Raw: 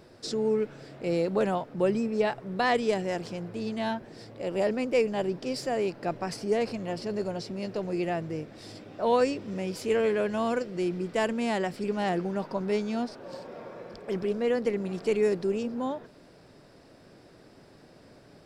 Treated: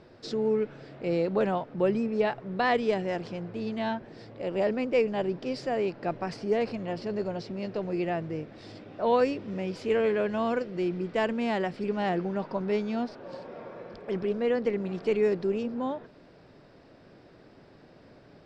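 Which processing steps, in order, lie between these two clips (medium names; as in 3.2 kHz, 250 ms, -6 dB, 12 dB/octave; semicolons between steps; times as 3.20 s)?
low-pass 4 kHz 12 dB/octave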